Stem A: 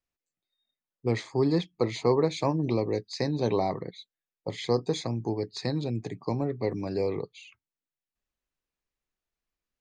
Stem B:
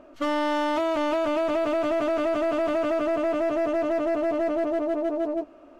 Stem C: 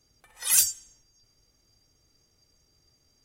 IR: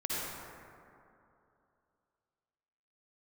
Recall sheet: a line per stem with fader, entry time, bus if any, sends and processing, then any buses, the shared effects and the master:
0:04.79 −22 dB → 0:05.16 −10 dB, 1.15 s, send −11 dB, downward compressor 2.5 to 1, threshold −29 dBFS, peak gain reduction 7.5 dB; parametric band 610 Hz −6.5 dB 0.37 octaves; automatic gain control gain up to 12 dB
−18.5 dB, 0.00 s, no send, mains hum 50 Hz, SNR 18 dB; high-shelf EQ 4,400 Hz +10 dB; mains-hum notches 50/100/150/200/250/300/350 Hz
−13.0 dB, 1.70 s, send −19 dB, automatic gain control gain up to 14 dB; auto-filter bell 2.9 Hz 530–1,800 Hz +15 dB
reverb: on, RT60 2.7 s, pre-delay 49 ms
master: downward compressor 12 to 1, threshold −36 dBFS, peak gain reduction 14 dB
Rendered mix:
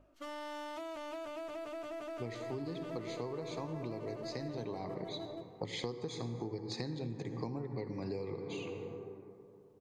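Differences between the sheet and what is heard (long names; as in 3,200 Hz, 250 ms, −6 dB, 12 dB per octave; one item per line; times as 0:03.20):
stem A: missing downward compressor 2.5 to 1, threshold −29 dBFS, peak gain reduction 7.5 dB
stem C: muted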